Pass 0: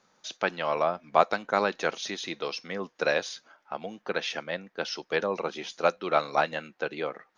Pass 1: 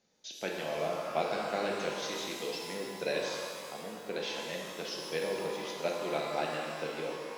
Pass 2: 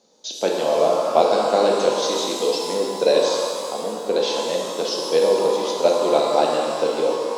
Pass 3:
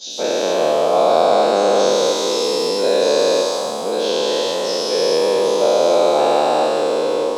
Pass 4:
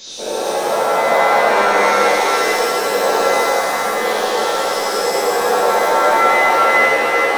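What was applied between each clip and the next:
bell 1200 Hz -15 dB 0.97 oct; shimmer reverb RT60 2.2 s, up +12 st, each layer -8 dB, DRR -1.5 dB; gain -6 dB
graphic EQ 125/250/500/1000/2000/4000/8000 Hz -4/+9/+11/+11/-6/+9/+11 dB; gain +3.5 dB
spectral dilation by 0.48 s; gain -4 dB
zero-crossing step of -26.5 dBFS; downsampling 16000 Hz; shimmer reverb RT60 2.3 s, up +7 st, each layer -2 dB, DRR -3.5 dB; gain -9 dB

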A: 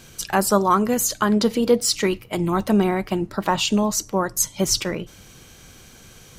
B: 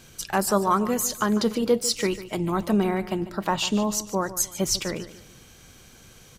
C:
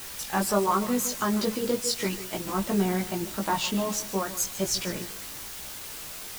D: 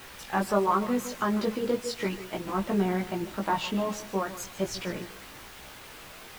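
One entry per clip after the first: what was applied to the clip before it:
feedback echo 0.147 s, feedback 36%, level -15 dB; gain -4 dB
requantised 6-bit, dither triangular; chorus voices 4, 0.35 Hz, delay 18 ms, depth 2.6 ms
tone controls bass -2 dB, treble -13 dB

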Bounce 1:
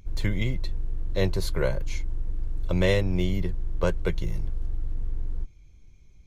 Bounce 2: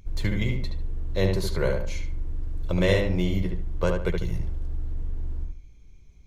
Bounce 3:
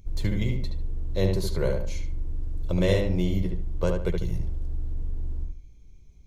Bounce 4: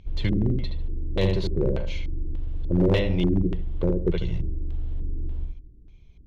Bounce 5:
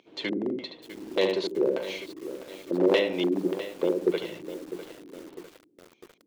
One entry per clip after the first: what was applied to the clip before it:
darkening echo 73 ms, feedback 31%, low-pass 3000 Hz, level -3.5 dB
bell 1700 Hz -6.5 dB 1.9 oct
LFO low-pass square 1.7 Hz 330–3200 Hz; one-sided clip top -15 dBFS, bottom -14.5 dBFS; gain +1.5 dB
HPF 290 Hz 24 dB/oct; lo-fi delay 0.652 s, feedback 55%, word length 7-bit, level -12 dB; gain +2.5 dB

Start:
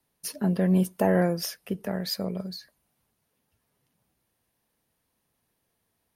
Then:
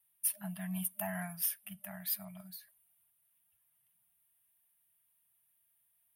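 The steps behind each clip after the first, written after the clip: pre-emphasis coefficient 0.9; FFT band-reject 210–600 Hz; band shelf 5600 Hz -15 dB 1.1 oct; gain +3 dB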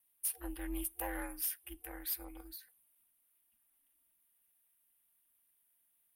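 ring modulator 140 Hz; soft clip -29.5 dBFS, distortion -14 dB; gain +2.5 dB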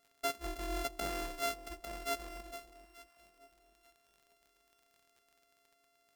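sample sorter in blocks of 64 samples; echo with dull and thin repeats by turns 0.441 s, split 880 Hz, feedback 52%, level -13 dB; crackle 39/s -53 dBFS; gain +1.5 dB

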